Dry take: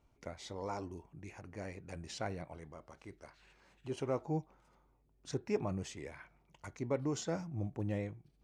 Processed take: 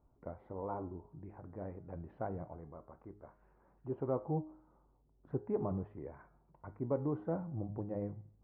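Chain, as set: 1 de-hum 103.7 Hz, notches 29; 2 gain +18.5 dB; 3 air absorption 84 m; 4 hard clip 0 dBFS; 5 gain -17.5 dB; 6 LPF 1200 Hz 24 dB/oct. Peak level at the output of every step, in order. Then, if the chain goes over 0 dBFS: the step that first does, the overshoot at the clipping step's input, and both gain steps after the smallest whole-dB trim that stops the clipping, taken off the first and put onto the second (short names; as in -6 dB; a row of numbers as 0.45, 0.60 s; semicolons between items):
-22.0, -3.5, -4.0, -4.0, -21.5, -22.5 dBFS; no overload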